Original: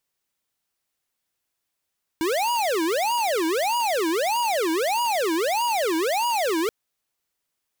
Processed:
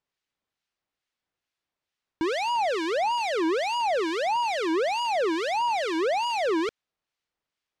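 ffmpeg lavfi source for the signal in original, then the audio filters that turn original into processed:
-f lavfi -i "aevalsrc='0.0708*(2*lt(mod((640.5*t-322.5/(2*PI*1.6)*sin(2*PI*1.6*t)),1),0.5)-1)':d=4.48:s=44100"
-filter_complex "[0:a]lowpass=4400,acrossover=split=1500[s0][s1];[s0]aeval=exprs='val(0)*(1-0.5/2+0.5/2*cos(2*PI*2.3*n/s))':c=same[s2];[s1]aeval=exprs='val(0)*(1-0.5/2-0.5/2*cos(2*PI*2.3*n/s))':c=same[s3];[s2][s3]amix=inputs=2:normalize=0"

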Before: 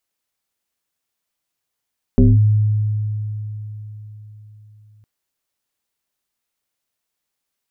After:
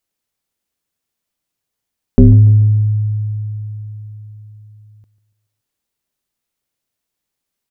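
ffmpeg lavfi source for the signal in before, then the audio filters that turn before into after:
-f lavfi -i "aevalsrc='0.473*pow(10,-3*t/4.2)*sin(2*PI*106*t+1.7*clip(1-t/0.21,0,1)*sin(2*PI*1.36*106*t))':d=2.86:s=44100"
-filter_complex "[0:a]asplit=2[s0][s1];[s1]adynamicsmooth=sensitivity=7:basefreq=680,volume=0.891[s2];[s0][s2]amix=inputs=2:normalize=0,aecho=1:1:143|286|429|572:0.15|0.0718|0.0345|0.0165"

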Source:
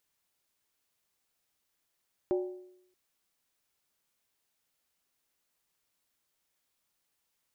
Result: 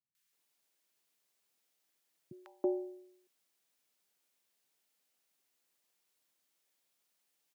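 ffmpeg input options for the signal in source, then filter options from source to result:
-f lavfi -i "aevalsrc='0.0631*pow(10,-3*t/0.77)*sin(2*PI*365*t)+0.0237*pow(10,-3*t/0.61)*sin(2*PI*581.8*t)+0.00891*pow(10,-3*t/0.527)*sin(2*PI*779.6*t)+0.00335*pow(10,-3*t/0.508)*sin(2*PI*838*t)+0.00126*pow(10,-3*t/0.473)*sin(2*PI*968.3*t)':d=0.63:s=44100"
-filter_complex "[0:a]highpass=f=140:w=0.5412,highpass=f=140:w=1.3066,acrossover=split=190|1200[s0][s1][s2];[s2]adelay=150[s3];[s1]adelay=330[s4];[s0][s4][s3]amix=inputs=3:normalize=0"

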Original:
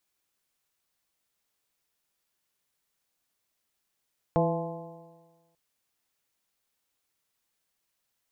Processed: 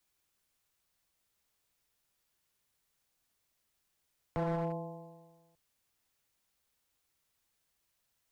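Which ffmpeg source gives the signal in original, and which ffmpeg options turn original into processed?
-f lavfi -i "aevalsrc='0.0631*pow(10,-3*t/1.39)*sin(2*PI*164.28*t)+0.0355*pow(10,-3*t/1.39)*sin(2*PI*330.22*t)+0.0596*pow(10,-3*t/1.39)*sin(2*PI*499.47*t)+0.0562*pow(10,-3*t/1.39)*sin(2*PI*673.61*t)+0.0355*pow(10,-3*t/1.39)*sin(2*PI*854.14*t)+0.0178*pow(10,-3*t/1.39)*sin(2*PI*1042.48*t)':d=1.19:s=44100"
-filter_complex "[0:a]acrossover=split=120|800[s0][s1][s2];[s0]acontrast=83[s3];[s3][s1][s2]amix=inputs=3:normalize=0,alimiter=limit=0.0631:level=0:latency=1:release=34,volume=29.9,asoftclip=hard,volume=0.0335"

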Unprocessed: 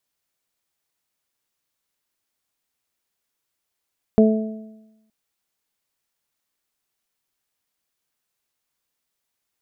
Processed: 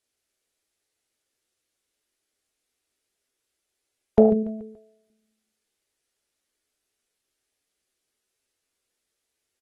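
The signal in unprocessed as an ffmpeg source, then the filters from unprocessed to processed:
-f lavfi -i "aevalsrc='0.316*pow(10,-3*t/1.02)*sin(2*PI*218*t)+0.224*pow(10,-3*t/0.78)*sin(2*PI*436*t)+0.126*pow(10,-3*t/0.91)*sin(2*PI*654*t)':d=0.92:s=44100"
-af "equalizer=f=160:t=o:w=0.67:g=-8,equalizer=f=400:t=o:w=0.67:g=5,equalizer=f=1000:t=o:w=0.67:g=-7,aecho=1:1:143|286|429|572:0.224|0.0985|0.0433|0.0191" -ar 32000 -c:a aac -b:a 32k

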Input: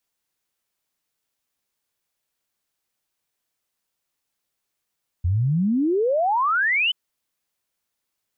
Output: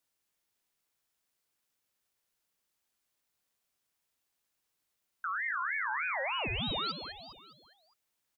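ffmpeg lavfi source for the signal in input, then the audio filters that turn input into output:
-f lavfi -i "aevalsrc='0.133*clip(min(t,1.68-t)/0.01,0,1)*sin(2*PI*82*1.68/log(3100/82)*(exp(log(3100/82)*t/1.68)-1))':d=1.68:s=44100"
-filter_complex "[0:a]alimiter=level_in=1.68:limit=0.0631:level=0:latency=1:release=91,volume=0.596,asplit=2[s0][s1];[s1]aecho=0:1:204|408|612|816|1020:0.355|0.167|0.0784|0.0368|0.0173[s2];[s0][s2]amix=inputs=2:normalize=0,aeval=exprs='val(0)*sin(2*PI*1600*n/s+1600*0.25/3.3*sin(2*PI*3.3*n/s))':c=same"

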